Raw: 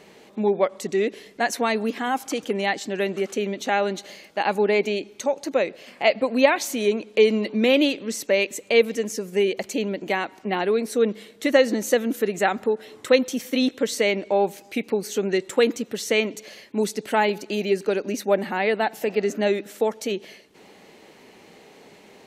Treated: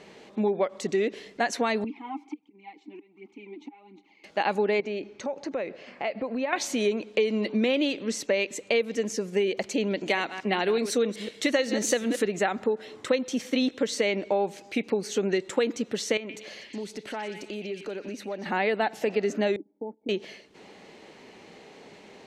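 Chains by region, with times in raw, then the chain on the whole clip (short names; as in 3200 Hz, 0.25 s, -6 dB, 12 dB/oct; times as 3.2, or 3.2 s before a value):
1.84–4.24 phaser 1.4 Hz, delay 3.5 ms, feedback 57% + auto swell 0.649 s + vowel filter u
4.8–6.53 LPF 4500 Hz + bell 3500 Hz -6 dB 0.73 oct + compressor 3:1, threshold -29 dBFS
9.9–12.26 reverse delay 0.126 s, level -13 dB + high shelf 2700 Hz +10.5 dB + decimation joined by straight lines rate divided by 2×
16.17–18.46 dynamic EQ 5700 Hz, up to -5 dB, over -42 dBFS, Q 0.93 + compressor 3:1, threshold -35 dBFS + delay with a stepping band-pass 0.121 s, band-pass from 2400 Hz, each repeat 0.7 oct, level -3.5 dB
19.56–20.09 gate -35 dBFS, range -12 dB + dynamic EQ 930 Hz, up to -4 dB, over -40 dBFS, Q 2.2 + vocal tract filter u
whole clip: LPF 7000 Hz 12 dB/oct; compressor 6:1, threshold -21 dBFS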